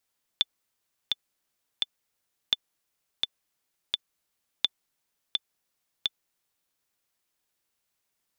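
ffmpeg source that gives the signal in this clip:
-f lavfi -i "aevalsrc='pow(10,(-8.5-3.5*gte(mod(t,3*60/85),60/85))/20)*sin(2*PI*3510*mod(t,60/85))*exp(-6.91*mod(t,60/85)/0.03)':d=6.35:s=44100"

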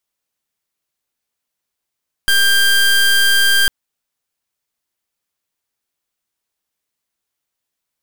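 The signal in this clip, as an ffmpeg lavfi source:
-f lavfi -i "aevalsrc='0.251*(2*lt(mod(1590*t,1),0.23)-1)':d=1.4:s=44100"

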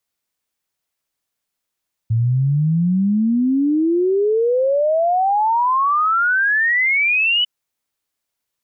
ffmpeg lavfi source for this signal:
-f lavfi -i "aevalsrc='0.211*clip(min(t,5.35-t)/0.01,0,1)*sin(2*PI*110*5.35/log(3000/110)*(exp(log(3000/110)*t/5.35)-1))':d=5.35:s=44100"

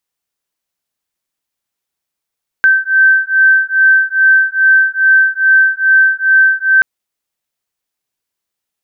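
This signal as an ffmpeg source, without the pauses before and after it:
-f lavfi -i "aevalsrc='0.316*(sin(2*PI*1550*t)+sin(2*PI*1552.4*t))':d=4.18:s=44100"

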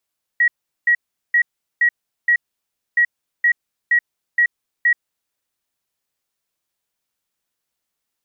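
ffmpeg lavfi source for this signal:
-f lavfi -i "aevalsrc='0.282*sin(2*PI*1910*t)*clip(min(mod(mod(t,2.57),0.47),0.08-mod(mod(t,2.57),0.47))/0.005,0,1)*lt(mod(t,2.57),2.35)':d=5.14:s=44100"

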